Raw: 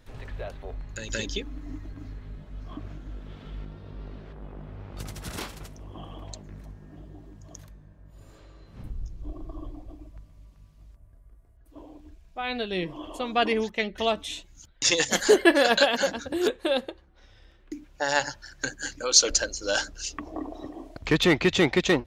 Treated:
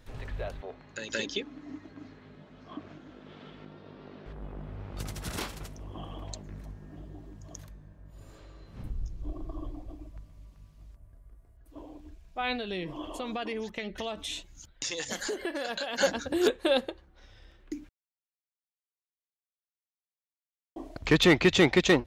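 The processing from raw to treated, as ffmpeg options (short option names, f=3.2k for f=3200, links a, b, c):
-filter_complex "[0:a]asettb=1/sr,asplit=3[a][b][c];[a]atrim=end=0.614[d];[b]atrim=start=0.61:end=4.26,asetpts=PTS-STARTPTS,afade=t=in:d=0.004:c=qsin,afade=t=out:st=3.646:d=0.004:c=qsin,highpass=210,lowpass=5.5k[e];[c]atrim=start=4.256[f];[d][e]acrossfade=d=0.004:c1=hsin:c2=qsin[g];[g][f]acrossfade=d=0.004:c1=qsin:c2=hsin,asettb=1/sr,asplit=3[h][i][j];[h]atrim=end=12.554[k];[i]atrim=start=12.55:end=15.98,asetpts=PTS-STARTPTS,afade=t=in:d=0.004:c=qsin,afade=t=out:st=3.426:d=0.004:c=qsin,acompressor=threshold=-31dB:ratio=6:attack=3.2:release=140:knee=1:detection=peak[l];[j]atrim=start=15.976[m];[k][l]acrossfade=d=0.004:c1=hsin:c2=qsin[n];[n][m]acrossfade=d=0.004:c1=qsin:c2=hsin,asplit=3[o][p][q];[o]atrim=end=17.89,asetpts=PTS-STARTPTS,afade=t=out:st=17.886:d=0.004:c=hsin[r];[p]atrim=start=17.89:end=20.76,asetpts=PTS-STARTPTS,volume=0[s];[q]atrim=start=20.76,asetpts=PTS-STARTPTS,afade=t=in:d=0.004:c=hsin[t];[r][s][t]concat=n=3:v=0:a=1"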